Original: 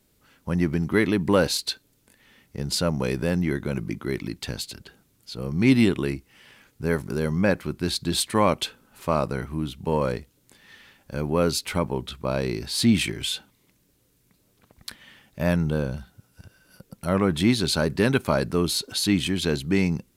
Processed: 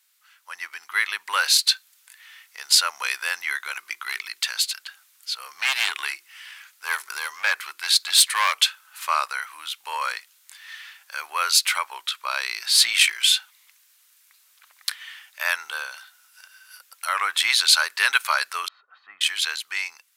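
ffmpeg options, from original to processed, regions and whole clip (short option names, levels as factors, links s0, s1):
-filter_complex "[0:a]asettb=1/sr,asplit=3[s0][s1][s2];[s0]atrim=end=3.744[s3];[s1]atrim=start=3.74:end=8.61,asetpts=PTS-STARTPTS,afade=t=in:d=0.004:c=qsin,afade=t=out:st=4.866:d=0.004:c=qsin,asoftclip=type=hard:threshold=0.133,bandreject=f=50:t=h:w=6,bandreject=f=100:t=h:w=6,bandreject=f=150:t=h:w=6,bandreject=f=200:t=h:w=6,bandreject=f=250:t=h:w=6,bandreject=f=300:t=h:w=6,bandreject=f=350:t=h:w=6,bandreject=f=400:t=h:w=6,bandreject=f=450:t=h:w=6[s4];[s2]atrim=start=8.606[s5];[s3][s4]acrossfade=d=0.004:c1=hsin:c2=qsin[s6];[s6][s5]acrossfade=d=0.004:c1=qsin:c2=hsin,asettb=1/sr,asplit=3[s7][s8][s9];[s7]atrim=end=18.684[s10];[s8]atrim=start=18.68:end=19.21,asetpts=PTS-STARTPTS,afade=t=in:d=0.004:c=qsin,afade=t=out:st=0.526:d=0.004:c=qsin,lowpass=f=1100:w=0.5412,lowpass=f=1100:w=1.3066,equalizer=f=580:t=o:w=1.5:g=-11,aecho=1:1:1.6:0.58,atrim=end_sample=23373[s11];[s9]atrim=start=19.206[s12];[s10][s11]acrossfade=d=0.004:c1=hsin:c2=qsin[s13];[s13][s12]acrossfade=d=0.004:c1=qsin:c2=hsin,highpass=f=1200:w=0.5412,highpass=f=1200:w=1.3066,dynaudnorm=f=240:g=11:m=2.24,volume=1.5"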